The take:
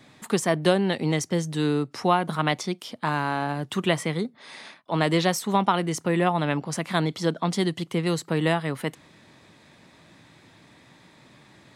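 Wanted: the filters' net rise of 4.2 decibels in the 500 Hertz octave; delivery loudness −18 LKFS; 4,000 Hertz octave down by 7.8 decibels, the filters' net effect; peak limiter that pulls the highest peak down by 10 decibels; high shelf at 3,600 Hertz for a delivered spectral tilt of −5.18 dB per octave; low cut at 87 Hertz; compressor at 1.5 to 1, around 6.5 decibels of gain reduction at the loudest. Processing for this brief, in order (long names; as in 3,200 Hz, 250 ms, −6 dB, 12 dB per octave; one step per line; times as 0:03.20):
high-pass filter 87 Hz
parametric band 500 Hz +5.5 dB
high-shelf EQ 3,600 Hz −4.5 dB
parametric band 4,000 Hz −8 dB
downward compressor 1.5 to 1, threshold −32 dBFS
level +15 dB
brickwall limiter −7 dBFS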